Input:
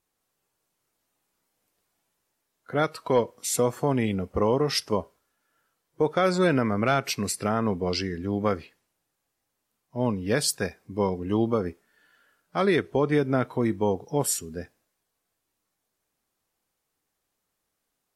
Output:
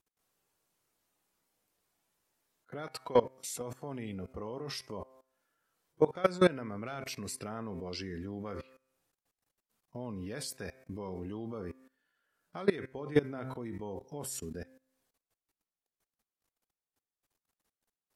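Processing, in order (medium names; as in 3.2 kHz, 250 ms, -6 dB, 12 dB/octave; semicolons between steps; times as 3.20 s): de-hum 130.9 Hz, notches 19; level held to a coarse grid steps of 20 dB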